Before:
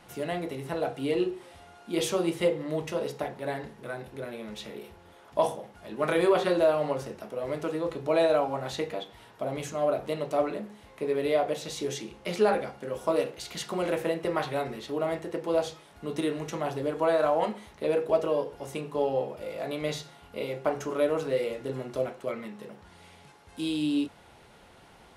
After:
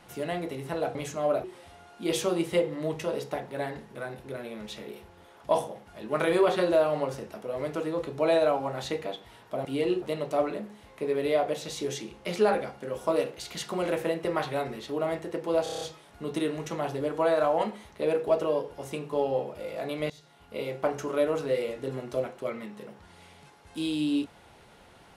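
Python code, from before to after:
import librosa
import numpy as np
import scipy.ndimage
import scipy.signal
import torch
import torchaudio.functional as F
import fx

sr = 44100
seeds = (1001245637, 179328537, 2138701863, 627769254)

y = fx.edit(x, sr, fx.swap(start_s=0.95, length_s=0.37, other_s=9.53, other_length_s=0.49),
    fx.stutter(start_s=15.63, slice_s=0.03, count=7),
    fx.fade_in_from(start_s=19.92, length_s=0.53, floor_db=-20.5), tone=tone)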